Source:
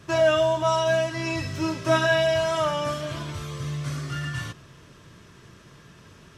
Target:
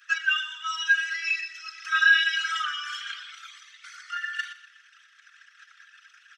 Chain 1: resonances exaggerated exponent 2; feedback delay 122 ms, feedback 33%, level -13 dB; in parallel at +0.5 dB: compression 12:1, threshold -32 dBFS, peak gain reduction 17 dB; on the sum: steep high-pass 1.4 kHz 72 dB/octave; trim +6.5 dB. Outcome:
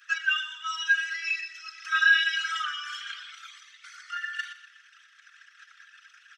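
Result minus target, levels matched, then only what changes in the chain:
compression: peak gain reduction +7 dB
change: compression 12:1, threshold -24.5 dBFS, peak gain reduction 10 dB

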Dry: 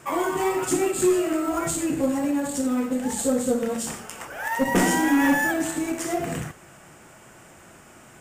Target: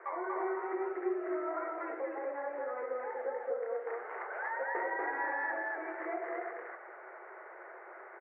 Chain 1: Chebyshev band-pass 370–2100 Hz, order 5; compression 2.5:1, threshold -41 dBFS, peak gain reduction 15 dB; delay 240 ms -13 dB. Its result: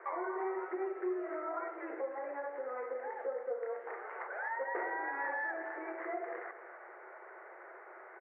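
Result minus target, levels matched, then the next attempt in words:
echo-to-direct -11.5 dB
Chebyshev band-pass 370–2100 Hz, order 5; compression 2.5:1, threshold -41 dBFS, peak gain reduction 15 dB; delay 240 ms -1.5 dB

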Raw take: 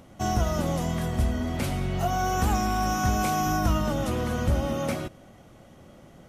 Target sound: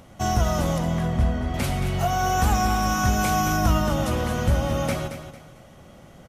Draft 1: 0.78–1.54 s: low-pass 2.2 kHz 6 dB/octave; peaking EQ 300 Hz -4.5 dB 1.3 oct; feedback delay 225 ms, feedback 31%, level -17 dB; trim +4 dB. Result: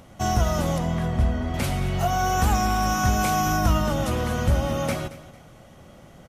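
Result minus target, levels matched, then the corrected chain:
echo-to-direct -7 dB
0.78–1.54 s: low-pass 2.2 kHz 6 dB/octave; peaking EQ 300 Hz -4.5 dB 1.3 oct; feedback delay 225 ms, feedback 31%, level -10 dB; trim +4 dB

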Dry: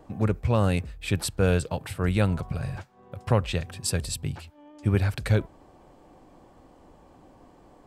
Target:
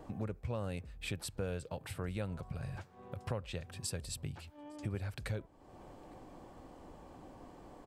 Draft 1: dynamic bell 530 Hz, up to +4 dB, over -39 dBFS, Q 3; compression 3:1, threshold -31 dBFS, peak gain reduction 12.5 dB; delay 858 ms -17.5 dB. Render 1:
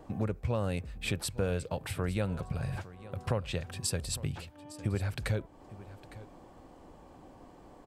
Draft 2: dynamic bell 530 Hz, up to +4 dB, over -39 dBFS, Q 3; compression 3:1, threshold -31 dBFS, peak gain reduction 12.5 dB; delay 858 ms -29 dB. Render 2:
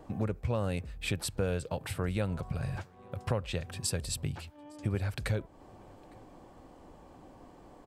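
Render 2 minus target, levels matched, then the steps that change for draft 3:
compression: peak gain reduction -7 dB
change: compression 3:1, threshold -41.5 dBFS, peak gain reduction 19.5 dB

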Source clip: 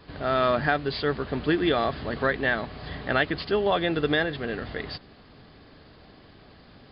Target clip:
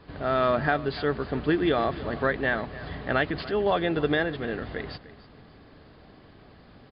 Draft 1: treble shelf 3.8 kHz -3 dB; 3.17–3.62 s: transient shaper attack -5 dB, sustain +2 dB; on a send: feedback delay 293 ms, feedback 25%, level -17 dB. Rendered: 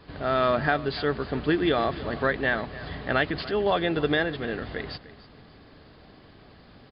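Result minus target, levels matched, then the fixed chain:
4 kHz band +2.5 dB
treble shelf 3.8 kHz -10 dB; 3.17–3.62 s: transient shaper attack -5 dB, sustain +2 dB; on a send: feedback delay 293 ms, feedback 25%, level -17 dB

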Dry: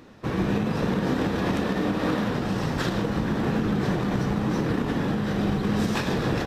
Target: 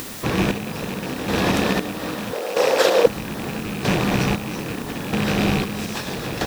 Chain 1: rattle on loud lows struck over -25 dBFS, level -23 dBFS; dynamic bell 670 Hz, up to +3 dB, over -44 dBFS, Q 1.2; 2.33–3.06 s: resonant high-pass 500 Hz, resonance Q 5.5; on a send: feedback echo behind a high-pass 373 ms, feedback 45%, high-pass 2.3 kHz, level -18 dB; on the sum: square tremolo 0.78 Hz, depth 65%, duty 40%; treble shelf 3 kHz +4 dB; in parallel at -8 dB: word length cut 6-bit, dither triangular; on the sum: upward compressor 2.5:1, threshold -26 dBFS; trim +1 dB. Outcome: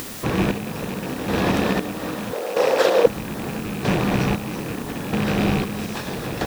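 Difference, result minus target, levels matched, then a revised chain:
4 kHz band -3.0 dB
rattle on loud lows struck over -25 dBFS, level -23 dBFS; dynamic bell 670 Hz, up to +3 dB, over -44 dBFS, Q 1.2; 2.33–3.06 s: resonant high-pass 500 Hz, resonance Q 5.5; on a send: feedback echo behind a high-pass 373 ms, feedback 45%, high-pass 2.3 kHz, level -18 dB; on the sum: square tremolo 0.78 Hz, depth 65%, duty 40%; treble shelf 3 kHz +11 dB; in parallel at -8 dB: word length cut 6-bit, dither triangular; on the sum: upward compressor 2.5:1, threshold -26 dBFS; trim +1 dB

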